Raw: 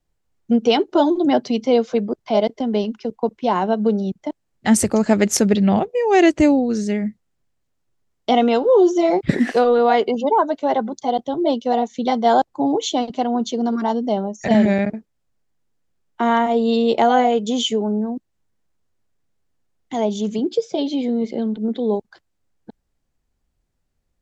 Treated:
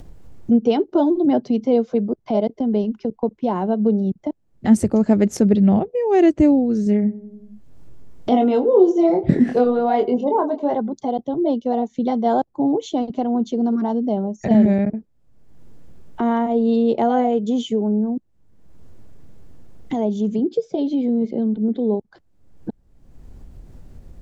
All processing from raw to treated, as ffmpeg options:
-filter_complex "[0:a]asettb=1/sr,asplit=3[s0][s1][s2];[s0]atrim=end=6.844[s3];[s1]atrim=start=6.84:end=10.75,asetpts=PTS-STARTPTS,afade=t=in:d=0.004:c=qsin,afade=t=out:st=3.906:d=0.004:c=qsin,asplit=2[s4][s5];[s5]adelay=24,volume=0.531[s6];[s4][s6]amix=inputs=2:normalize=0,atrim=end_sample=172431,asplit=2[s7][s8];[s8]adelay=94,lowpass=f=840:p=1,volume=0.158,asplit=2[s9][s10];[s10]adelay=94,lowpass=f=840:p=1,volume=0.51,asplit=2[s11][s12];[s12]adelay=94,lowpass=f=840:p=1,volume=0.51,asplit=2[s13][s14];[s14]adelay=94,lowpass=f=840:p=1,volume=0.51,asplit=2[s15][s16];[s16]adelay=94,lowpass=f=840:p=1,volume=0.51[s17];[s7][s9][s11][s13][s15][s17]amix=inputs=6:normalize=0,atrim=end_sample=172431[s18];[s2]atrim=start=10.746[s19];[s3][s18]acrossfade=d=0.004:c1=hsin:c2=qsin[s20];[s20][s19]acrossfade=d=0.004:c1=qsin:c2=hsin,acompressor=mode=upward:threshold=0.126:ratio=2.5,tiltshelf=f=780:g=8,volume=0.562"

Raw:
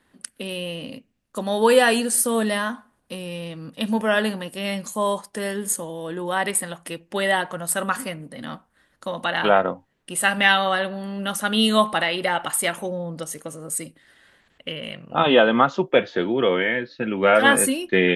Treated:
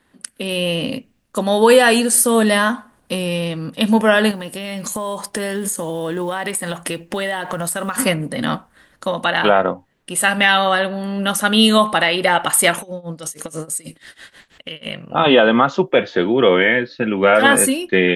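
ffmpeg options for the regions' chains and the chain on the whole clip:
-filter_complex "[0:a]asettb=1/sr,asplit=3[s0][s1][s2];[s0]atrim=end=4.314[s3];[s1]atrim=start=4.31:end=7.98,asetpts=PTS-STARTPTS,afade=t=in:d=0.004:c=qsin,afade=t=out:st=3.666:d=0.004:c=qsin,acompressor=threshold=0.0251:ratio=12:attack=3.2:release=140:knee=1:detection=peak,acrusher=bits=8:mode=log:mix=0:aa=0.000001[s4];[s2]atrim=start=7.976[s5];[s3][s4]acrossfade=d=0.004:c1=hsin:c2=qsin[s6];[s6][s5]acrossfade=d=0.004:c1=qsin:c2=hsin,asettb=1/sr,asplit=3[s7][s8][s9];[s7]atrim=end=12.784[s10];[s8]atrim=start=12.78:end=14.86,asetpts=PTS-STARTPTS,afade=t=in:d=0.004:c=qsin,afade=t=out:st=2.076:d=0.004:c=qsin,equalizer=f=6100:w=0.38:g=7,acompressor=threshold=0.0251:ratio=12:attack=3.2:release=140:knee=1:detection=peak,tremolo=f=6.2:d=0.91[s11];[s9]atrim=start=14.856[s12];[s10][s11]acrossfade=d=0.004:c1=hsin:c2=qsin[s13];[s13][s12]acrossfade=d=0.004:c1=qsin:c2=hsin,dynaudnorm=f=160:g=7:m=3.35,alimiter=level_in=1.58:limit=0.891:release=50:level=0:latency=1,volume=0.891"

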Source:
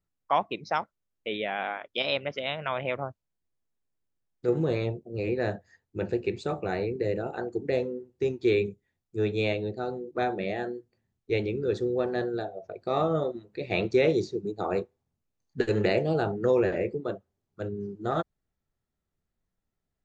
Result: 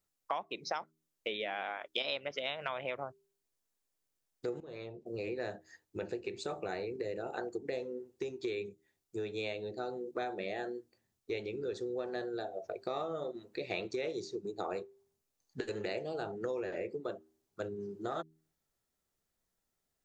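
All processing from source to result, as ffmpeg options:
-filter_complex "[0:a]asettb=1/sr,asplit=3[s0][s1][s2];[s0]atrim=end=4.604[s3];[s1]atrim=start=4.6:end=5.06,asetpts=PTS-STARTPTS,afade=t=in:d=0.004:c=qsin,afade=t=out:st=0.456:d=0.004:c=qsin,lowpass=5200,acompressor=threshold=0.00708:ratio=3:attack=3.2:release=140:knee=1:detection=peak[s4];[s2]atrim=start=5.056[s5];[s3][s4]acrossfade=d=0.004:c1=hsin:c2=qsin[s6];[s6][s5]acrossfade=d=0.004:c1=qsin:c2=hsin,acompressor=threshold=0.0178:ratio=6,bass=f=250:g=-9,treble=f=4000:g=7,bandreject=f=79.01:t=h:w=4,bandreject=f=158.02:t=h:w=4,bandreject=f=237.03:t=h:w=4,bandreject=f=316.04:t=h:w=4,bandreject=f=395.05:t=h:w=4,volume=1.19"

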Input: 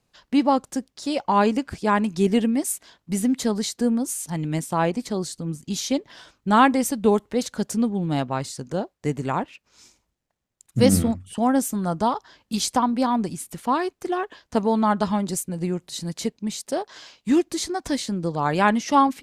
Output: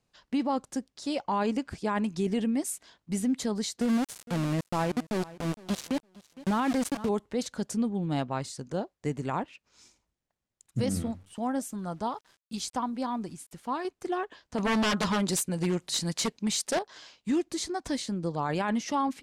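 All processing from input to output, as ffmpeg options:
-filter_complex "[0:a]asettb=1/sr,asplit=3[s0][s1][s2];[s0]atrim=end=3.814[s3];[s1]atrim=start=3.81:end=7.09,asetpts=PTS-STARTPTS,afade=t=in:d=0.004:c=qsin,afade=t=out:st=3.276:d=0.004:c=qsin,lowshelf=f=250:g=7,aeval=exprs='val(0)*gte(abs(val(0)),0.075)':c=same,aecho=1:1:460|920:0.0841|0.0143,atrim=end_sample=144648[s4];[s2]atrim=start=7.086[s5];[s3][s4]acrossfade=d=0.004:c1=hsin:c2=qsin[s6];[s6][s5]acrossfade=d=0.004:c1=qsin:c2=hsin,asettb=1/sr,asplit=3[s7][s8][s9];[s7]atrim=end=10.894[s10];[s8]atrim=start=10.89:end=13.85,asetpts=PTS-STARTPTS,afade=t=in:d=0.004:c=qsin,afade=t=out:st=2.956:d=0.004:c=qsin,flanger=delay=0.6:depth=2.7:regen=89:speed=1.1:shape=sinusoidal,aeval=exprs='val(0)*gte(abs(val(0)),0.00282)':c=same[s11];[s9]atrim=start=13.846[s12];[s10][s11]acrossfade=d=0.004:c1=hsin:c2=qsin[s13];[s13][s12]acrossfade=d=0.004:c1=qsin:c2=hsin,asettb=1/sr,asplit=3[s14][s15][s16];[s14]atrim=end=14.584[s17];[s15]atrim=start=14.58:end=16.79,asetpts=PTS-STARTPTS,afade=t=in:d=0.004:c=qsin,afade=t=out:st=2.206:d=0.004:c=qsin,tiltshelf=f=640:g=-3.5,acontrast=66,aeval=exprs='0.168*(abs(mod(val(0)/0.168+3,4)-2)-1)':c=same[s18];[s16]atrim=start=16.786[s19];[s17][s18]acrossfade=d=0.004:c1=hsin:c2=qsin[s20];[s20][s19]acrossfade=d=0.004:c1=qsin:c2=hsin,alimiter=limit=0.188:level=0:latency=1:release=21,lowpass=11000,volume=0.531"

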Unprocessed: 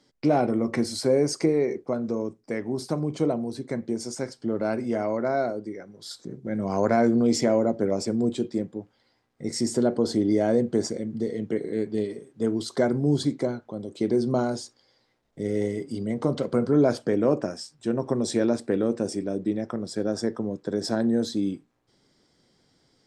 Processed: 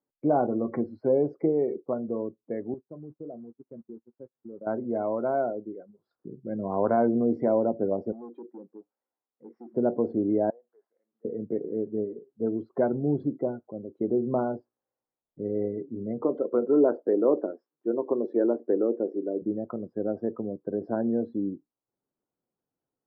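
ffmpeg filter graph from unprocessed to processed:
-filter_complex "[0:a]asettb=1/sr,asplit=3[s0][s1][s2];[s0]atrim=end=2.744[s3];[s1]atrim=start=2.74:end=4.67,asetpts=PTS-STARTPTS,afade=t=in:d=0.004:c=qsin,afade=t=out:st=1.926:d=0.004:c=qsin,aeval=exprs='val(0)+0.5*0.0211*sgn(val(0))':c=same,agate=range=0.0282:threshold=0.0355:ratio=16:release=100:detection=peak,acompressor=threshold=0.00562:ratio=2:attack=3.2:release=140:knee=1:detection=peak[s4];[s2]atrim=start=4.666[s5];[s3][s4]acrossfade=d=0.004:c1=hsin:c2=qsin[s6];[s6][s5]acrossfade=d=0.004:c1=qsin:c2=hsin,asettb=1/sr,asplit=3[s7][s8][s9];[s7]atrim=end=8.124[s10];[s8]atrim=start=8.12:end=9.74,asetpts=PTS-STARTPTS,afade=t=in:d=0.004:c=qsin,afade=t=out:st=1.616:d=0.004:c=qsin,acompressor=threshold=0.0282:ratio=2:attack=3.2:release=140:knee=1:detection=peak,asoftclip=type=hard:threshold=0.0251,highpass=290,lowpass=6700[s11];[s9]atrim=start=9.736[s12];[s10][s11]acrossfade=d=0.004:c1=hsin:c2=qsin[s13];[s13][s12]acrossfade=d=0.004:c1=qsin:c2=hsin,asettb=1/sr,asplit=3[s14][s15][s16];[s14]atrim=end=10.504[s17];[s15]atrim=start=10.5:end=11.25,asetpts=PTS-STARTPTS,afade=t=in:d=0.004:c=qsin,afade=t=out:st=0.746:d=0.004:c=qsin,highpass=1100,acompressor=threshold=0.00158:ratio=2:attack=3.2:release=140:knee=1:detection=peak[s18];[s16]atrim=start=11.246[s19];[s17][s18]acrossfade=d=0.004:c1=hsin:c2=qsin[s20];[s20][s19]acrossfade=d=0.004:c1=qsin:c2=hsin,asettb=1/sr,asplit=3[s21][s22][s23];[s21]atrim=end=16.224[s24];[s22]atrim=start=16.22:end=19.42,asetpts=PTS-STARTPTS,afade=t=in:d=0.004:c=qsin,afade=t=out:st=3.196:d=0.004:c=qsin,highpass=f=350:t=q:w=1.6,equalizer=f=710:w=2.1:g=-4.5[s25];[s23]atrim=start=19.416[s26];[s24][s25]acrossfade=d=0.004:c1=hsin:c2=qsin[s27];[s27][s26]acrossfade=d=0.004:c1=qsin:c2=hsin,afftdn=nr=20:nf=-34,lowpass=f=1300:w=0.5412,lowpass=f=1300:w=1.3066,lowshelf=f=220:g=-8.5"

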